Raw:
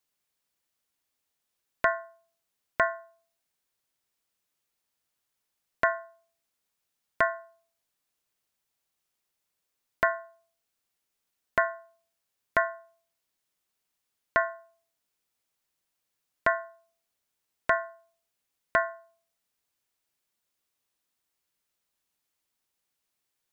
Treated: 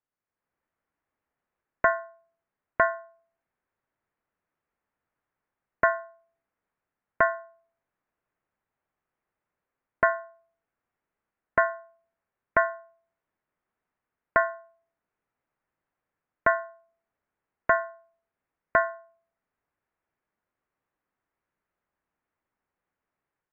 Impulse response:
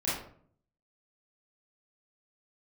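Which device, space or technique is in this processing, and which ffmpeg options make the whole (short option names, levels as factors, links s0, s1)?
action camera in a waterproof case: -af "lowpass=f=1900:w=0.5412,lowpass=f=1900:w=1.3066,dynaudnorm=f=260:g=3:m=2.82,volume=0.631" -ar 48000 -c:a aac -b:a 96k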